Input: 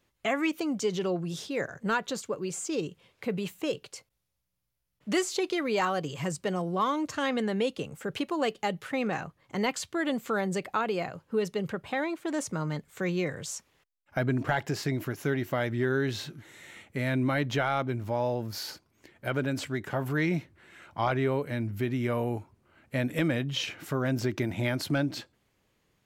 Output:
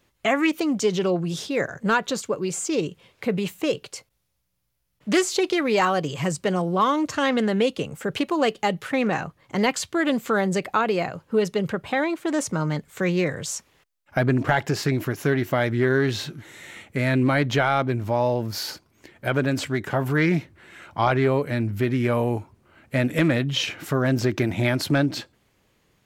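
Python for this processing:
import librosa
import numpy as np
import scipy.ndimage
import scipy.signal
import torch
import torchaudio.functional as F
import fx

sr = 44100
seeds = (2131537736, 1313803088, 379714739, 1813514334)

y = fx.doppler_dist(x, sr, depth_ms=0.15)
y = F.gain(torch.from_numpy(y), 7.0).numpy()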